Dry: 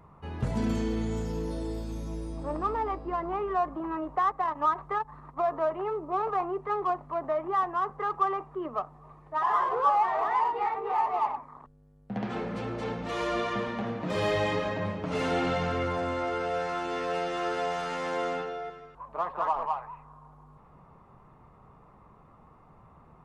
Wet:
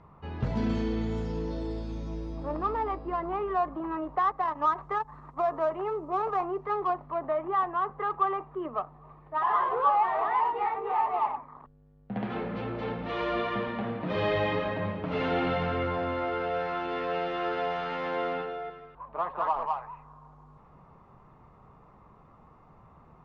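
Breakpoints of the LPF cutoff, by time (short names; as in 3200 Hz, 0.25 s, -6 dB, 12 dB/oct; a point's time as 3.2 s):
LPF 24 dB/oct
4.25 s 5100 Hz
5.07 s 8600 Hz
6.2 s 8600 Hz
7.24 s 3800 Hz
19.25 s 3800 Hz
19.93 s 7000 Hz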